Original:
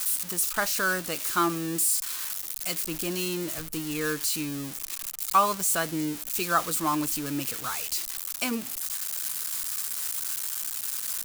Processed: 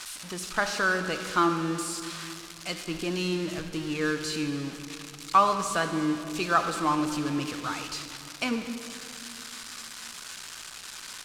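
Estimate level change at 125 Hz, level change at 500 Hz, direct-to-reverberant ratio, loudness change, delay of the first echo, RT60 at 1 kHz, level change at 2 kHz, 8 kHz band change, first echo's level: +2.5 dB, +2.0 dB, 7.5 dB, -2.0 dB, none, 2.4 s, +1.5 dB, -9.5 dB, none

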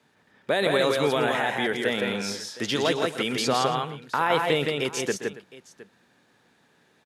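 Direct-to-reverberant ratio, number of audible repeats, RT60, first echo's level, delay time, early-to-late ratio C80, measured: none, 4, none, -12.5 dB, 0.126 s, none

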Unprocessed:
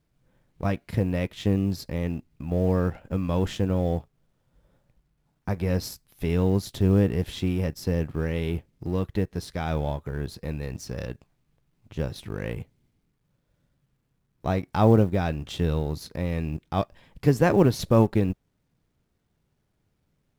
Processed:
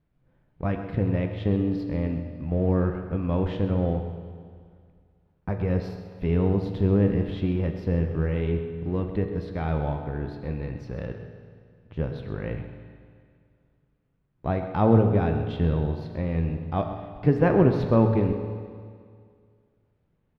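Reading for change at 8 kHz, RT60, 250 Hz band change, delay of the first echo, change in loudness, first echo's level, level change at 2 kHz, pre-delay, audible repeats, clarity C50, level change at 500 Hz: under -20 dB, 2.1 s, +0.5 dB, 0.13 s, +0.5 dB, -12.5 dB, -2.0 dB, 8 ms, 1, 6.0 dB, +0.5 dB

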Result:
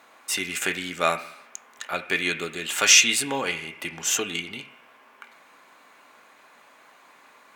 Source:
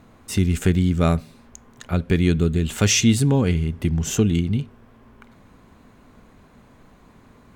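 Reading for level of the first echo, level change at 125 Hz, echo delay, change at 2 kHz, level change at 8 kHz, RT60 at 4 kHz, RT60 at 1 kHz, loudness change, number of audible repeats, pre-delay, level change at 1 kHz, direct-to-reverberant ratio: none, -25.5 dB, none, +7.5 dB, +4.5 dB, 1.0 s, 1.0 s, -2.0 dB, none, 3 ms, +3.5 dB, 3.0 dB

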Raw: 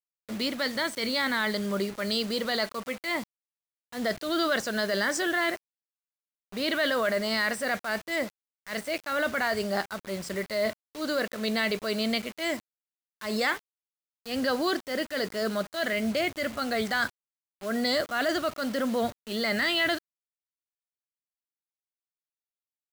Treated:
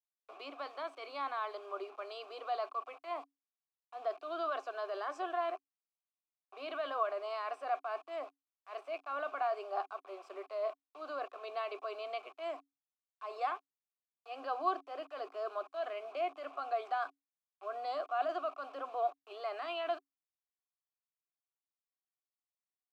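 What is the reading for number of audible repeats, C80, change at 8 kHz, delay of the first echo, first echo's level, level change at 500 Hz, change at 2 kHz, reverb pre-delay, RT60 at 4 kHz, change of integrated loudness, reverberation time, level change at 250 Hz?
none, none, under -30 dB, none, none, -9.0 dB, -18.5 dB, none, none, -11.0 dB, none, -24.0 dB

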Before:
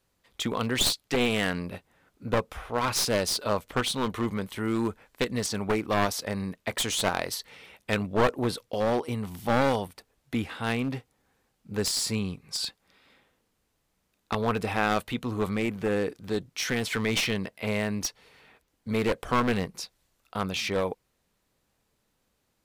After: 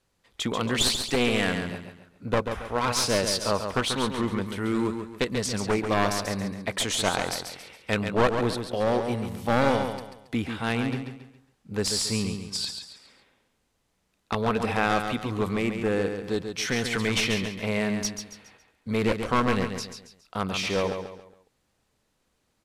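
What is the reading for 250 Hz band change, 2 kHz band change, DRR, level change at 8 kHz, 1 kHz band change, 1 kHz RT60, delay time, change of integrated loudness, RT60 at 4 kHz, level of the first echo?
+2.0 dB, +2.0 dB, none, +1.5 dB, +2.0 dB, none, 0.138 s, +1.5 dB, none, -7.0 dB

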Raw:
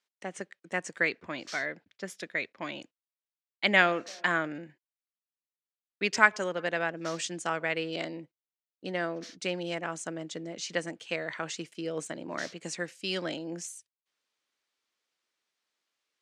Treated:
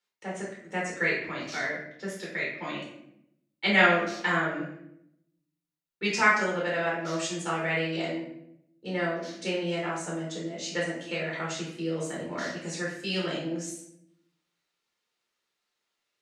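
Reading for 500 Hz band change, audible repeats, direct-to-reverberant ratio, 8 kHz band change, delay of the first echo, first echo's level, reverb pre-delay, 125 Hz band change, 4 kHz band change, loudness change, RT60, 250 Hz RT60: +3.0 dB, none, -5.5 dB, +1.0 dB, none, none, 8 ms, +6.5 dB, +2.0 dB, +2.5 dB, 0.80 s, 1.1 s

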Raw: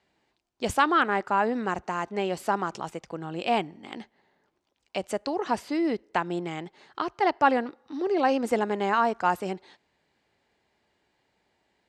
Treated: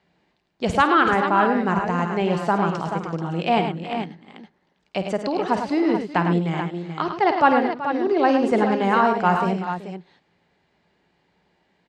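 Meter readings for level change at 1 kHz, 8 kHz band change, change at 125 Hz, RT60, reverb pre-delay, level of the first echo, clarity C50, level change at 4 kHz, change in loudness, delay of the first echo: +6.0 dB, n/a, +13.5 dB, none, none, -12.0 dB, none, +4.0 dB, +6.0 dB, 52 ms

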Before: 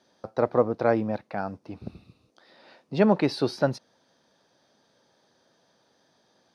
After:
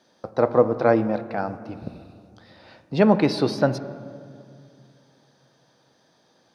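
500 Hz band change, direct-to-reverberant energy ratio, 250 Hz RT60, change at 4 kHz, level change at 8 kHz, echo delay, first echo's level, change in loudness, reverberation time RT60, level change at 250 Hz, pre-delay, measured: +4.0 dB, 11.0 dB, 2.9 s, +3.5 dB, +3.5 dB, none, none, +4.0 dB, 2.2 s, +4.0 dB, 4 ms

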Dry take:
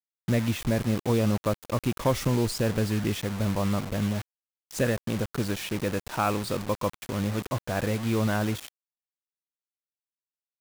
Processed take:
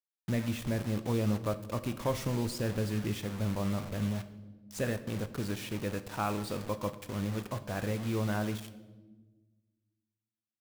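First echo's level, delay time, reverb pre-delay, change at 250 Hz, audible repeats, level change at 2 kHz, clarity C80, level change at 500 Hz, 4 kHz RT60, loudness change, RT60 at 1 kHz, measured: none, none, 7 ms, -6.0 dB, none, -7.0 dB, 16.0 dB, -7.0 dB, 0.90 s, -6.0 dB, 1.0 s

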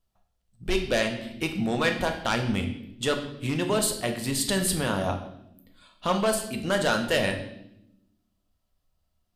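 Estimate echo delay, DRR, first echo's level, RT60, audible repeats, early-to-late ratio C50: none, 3.5 dB, none, 0.85 s, none, 8.5 dB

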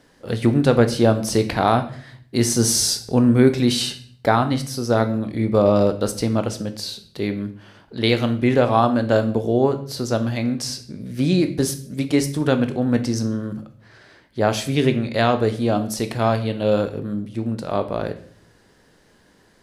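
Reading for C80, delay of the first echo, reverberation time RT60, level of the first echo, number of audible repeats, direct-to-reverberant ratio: 16.5 dB, none, 0.50 s, none, none, 8.0 dB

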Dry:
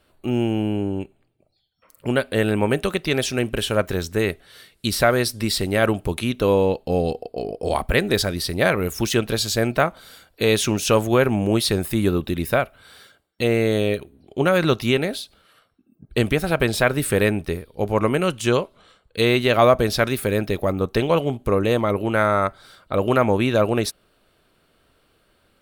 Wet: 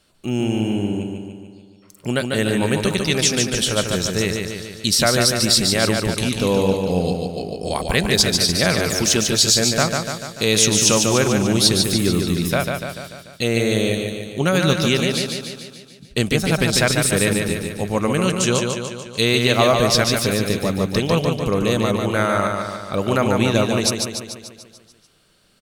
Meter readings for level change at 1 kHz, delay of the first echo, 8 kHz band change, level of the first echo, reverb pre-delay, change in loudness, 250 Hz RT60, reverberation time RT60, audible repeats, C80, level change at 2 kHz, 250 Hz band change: 0.0 dB, 0.146 s, +11.5 dB, -4.5 dB, none, +2.5 dB, none, none, 7, none, +2.0 dB, +2.5 dB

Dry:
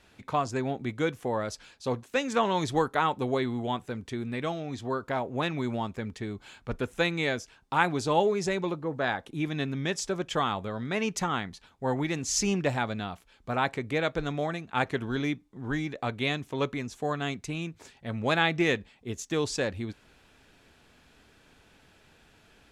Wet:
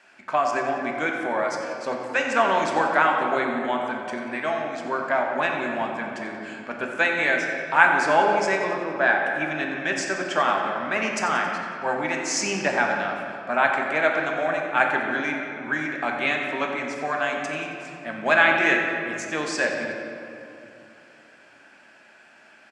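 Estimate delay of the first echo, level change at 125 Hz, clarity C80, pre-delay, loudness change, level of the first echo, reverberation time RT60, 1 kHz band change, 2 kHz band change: 91 ms, -8.0 dB, 3.0 dB, 4 ms, +6.5 dB, -11.5 dB, 2.8 s, +8.0 dB, +12.0 dB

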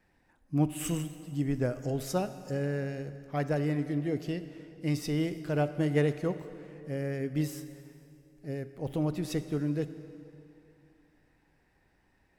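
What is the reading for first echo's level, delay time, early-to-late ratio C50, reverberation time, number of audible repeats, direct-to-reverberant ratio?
none, none, 12.0 dB, 2.7 s, none, 11.5 dB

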